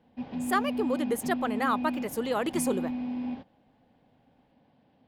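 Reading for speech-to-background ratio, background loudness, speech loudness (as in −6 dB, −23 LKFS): 3.5 dB, −34.0 LKFS, −30.5 LKFS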